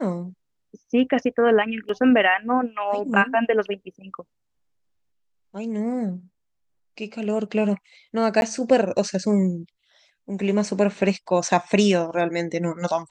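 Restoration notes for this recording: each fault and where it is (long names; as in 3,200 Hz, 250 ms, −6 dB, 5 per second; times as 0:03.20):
0:01.89: drop-out 3.2 ms
0:08.41–0:08.42: drop-out 11 ms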